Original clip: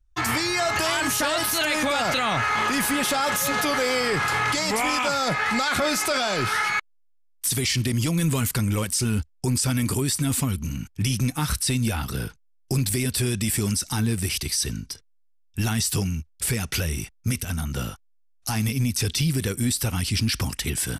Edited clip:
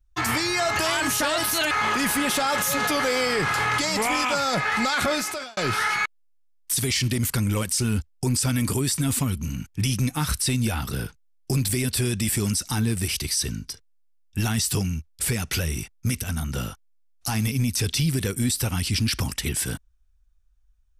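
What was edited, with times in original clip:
1.71–2.45 s: delete
5.81–6.31 s: fade out
7.97–8.44 s: delete

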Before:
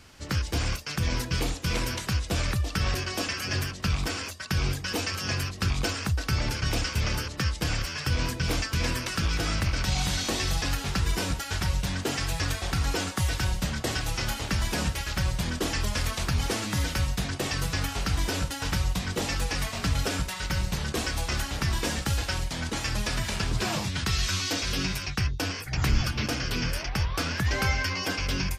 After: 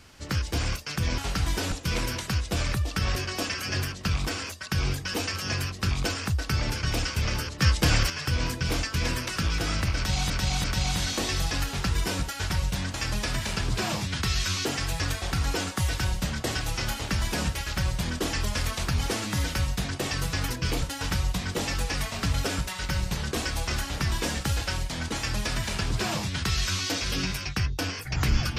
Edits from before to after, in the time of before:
1.18–1.51 s: swap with 17.89–18.43 s
7.41–7.89 s: gain +6.5 dB
9.75–10.09 s: loop, 3 plays
22.77–24.48 s: copy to 12.05 s

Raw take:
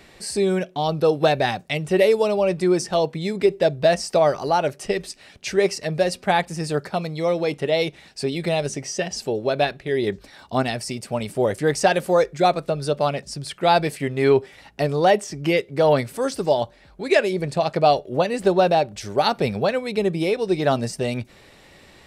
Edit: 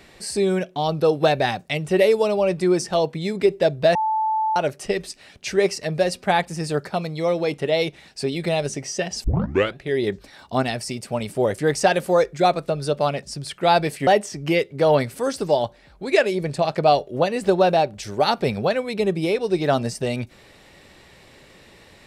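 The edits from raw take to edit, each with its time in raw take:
3.95–4.56 s: bleep 875 Hz -18.5 dBFS
9.24 s: tape start 0.52 s
14.07–15.05 s: delete

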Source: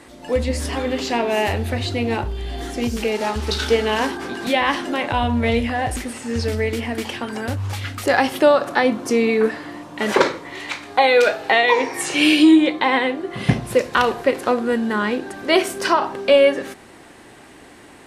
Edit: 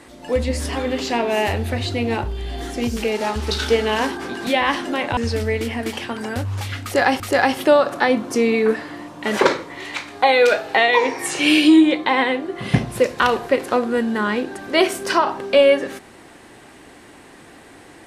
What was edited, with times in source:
5.17–6.29 s: delete
7.95–8.32 s: loop, 2 plays

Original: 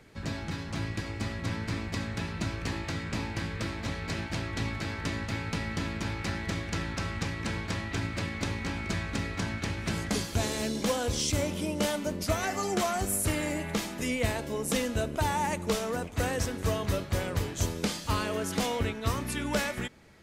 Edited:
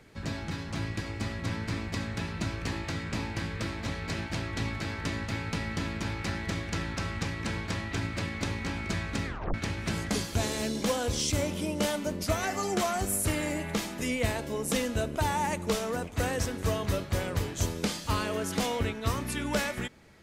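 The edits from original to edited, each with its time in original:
9.26 s: tape stop 0.28 s

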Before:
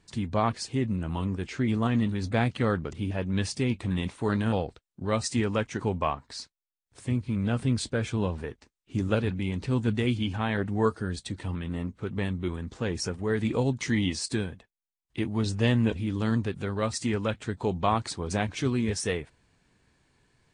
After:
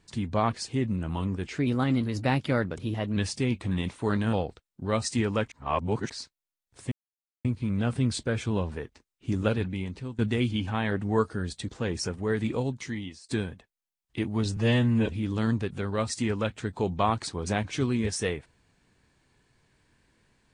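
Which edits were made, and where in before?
1.55–3.36 s: speed 112%
5.71–6.29 s: reverse
7.11 s: insert silence 0.53 s
9.09–9.85 s: fade out equal-power, to -19.5 dB
11.35–12.69 s: delete
13.31–14.29 s: fade out, to -24 dB
15.57–15.90 s: stretch 1.5×

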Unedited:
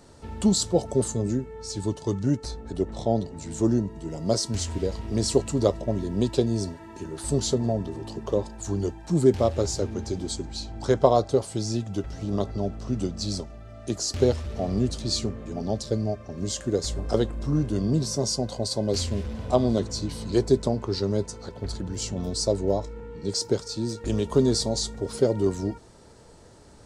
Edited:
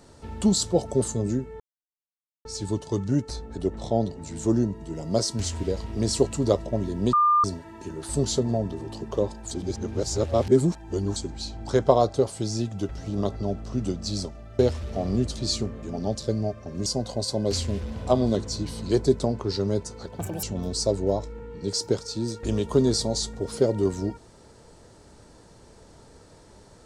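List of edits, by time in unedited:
1.60 s: insert silence 0.85 s
6.28–6.59 s: bleep 1.2 kHz -16 dBFS
8.66–10.31 s: reverse
13.74–14.22 s: delete
16.49–18.29 s: delete
21.62–22.04 s: speed 174%

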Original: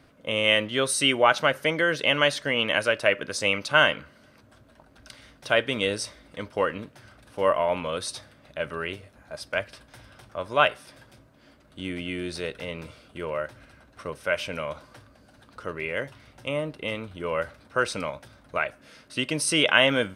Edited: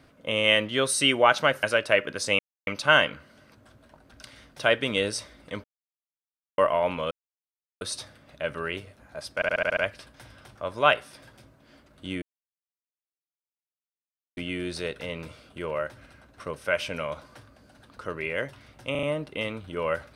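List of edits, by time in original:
1.63–2.77 s: delete
3.53 s: insert silence 0.28 s
6.50–7.44 s: mute
7.97 s: insert silence 0.70 s
9.51 s: stutter 0.07 s, 7 plays
11.96 s: insert silence 2.15 s
16.50 s: stutter 0.04 s, 4 plays

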